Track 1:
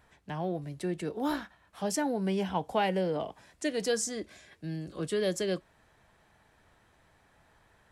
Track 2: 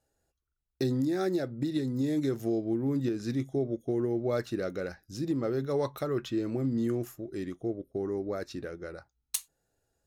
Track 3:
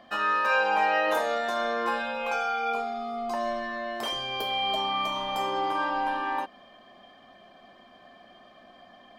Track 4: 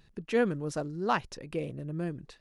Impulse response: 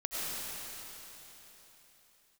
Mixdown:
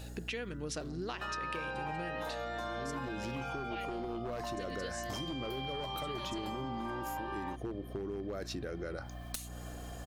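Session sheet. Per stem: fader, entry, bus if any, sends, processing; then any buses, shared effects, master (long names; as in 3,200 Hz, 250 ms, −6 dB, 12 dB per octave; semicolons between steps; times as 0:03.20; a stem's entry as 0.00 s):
−18.0 dB, 0.95 s, bus B, no send, no processing
+1.0 dB, 0.00 s, bus A, no send, wavefolder on the positive side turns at −25 dBFS; envelope flattener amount 50%; automatic ducking −21 dB, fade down 0.75 s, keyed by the fourth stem
−0.5 dB, 1.10 s, bus A, no send, no processing
+2.0 dB, 0.00 s, bus B, no send, hum removal 109.2 Hz, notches 19
bus A: 0.0 dB, downward compressor 2 to 1, threshold −39 dBFS, peak gain reduction 10 dB
bus B: 0.0 dB, meter weighting curve D; downward compressor, threshold −33 dBFS, peak gain reduction 14.5 dB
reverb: not used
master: mains hum 60 Hz, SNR 10 dB; downward compressor, threshold −35 dBFS, peak gain reduction 7 dB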